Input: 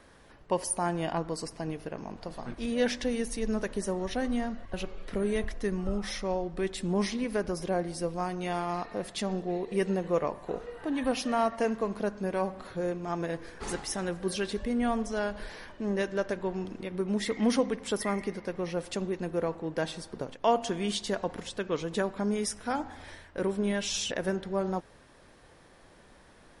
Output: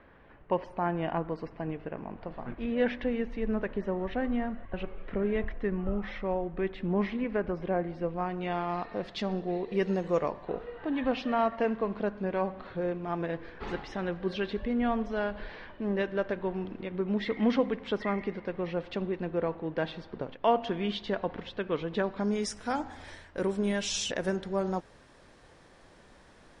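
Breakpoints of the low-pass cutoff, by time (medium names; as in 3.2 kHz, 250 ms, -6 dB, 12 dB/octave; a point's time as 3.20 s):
low-pass 24 dB/octave
8.00 s 2.7 kHz
9.15 s 4.6 kHz
9.79 s 4.6 kHz
10.09 s 8 kHz
10.50 s 3.6 kHz
21.92 s 3.6 kHz
22.63 s 9 kHz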